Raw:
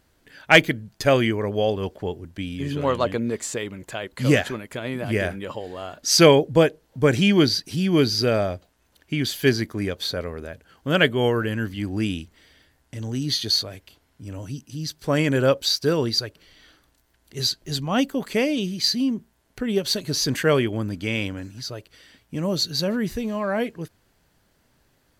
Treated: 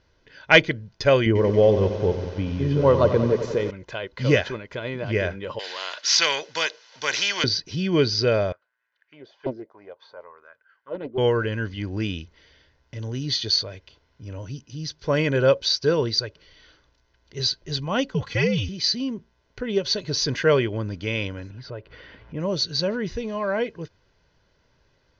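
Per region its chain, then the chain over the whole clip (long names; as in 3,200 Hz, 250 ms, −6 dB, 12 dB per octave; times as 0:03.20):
0:01.26–0:03.71: tilt shelving filter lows +7 dB, about 1,200 Hz + feedback echo at a low word length 92 ms, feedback 80%, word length 6 bits, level −10.5 dB
0:05.59–0:07.44: high-pass filter 1,500 Hz + high-shelf EQ 5,100 Hz +6 dB + every bin compressed towards the loudest bin 2 to 1
0:08.52–0:11.18: envelope filter 270–1,800 Hz, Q 4.5, down, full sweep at −15 dBFS + low-shelf EQ 180 Hz −5.5 dB + highs frequency-modulated by the lows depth 0.59 ms
0:18.14–0:18.69: comb filter 3.4 ms, depth 67% + frequency shifter −100 Hz + parametric band 370 Hz −4.5 dB 0.71 octaves
0:21.50–0:22.40: low-pass filter 2,000 Hz + upward compression, threshold −33 dBFS
whole clip: Butterworth low-pass 6,200 Hz 72 dB per octave; comb filter 2 ms, depth 41%; level −1 dB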